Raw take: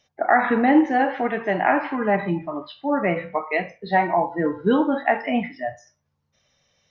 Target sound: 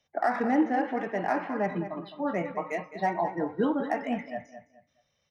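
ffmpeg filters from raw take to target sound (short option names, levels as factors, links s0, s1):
-filter_complex "[0:a]highshelf=f=4400:g=-4.5,acrossover=split=150|1500[s0][s1][s2];[s2]asoftclip=type=tanh:threshold=0.0376[s3];[s0][s1][s3]amix=inputs=3:normalize=0,atempo=1.3,asplit=2[s4][s5];[s5]adelay=211,lowpass=f=3800:p=1,volume=0.282,asplit=2[s6][s7];[s7]adelay=211,lowpass=f=3800:p=1,volume=0.28,asplit=2[s8][s9];[s9]adelay=211,lowpass=f=3800:p=1,volume=0.28[s10];[s4][s6][s8][s10]amix=inputs=4:normalize=0,volume=0.422"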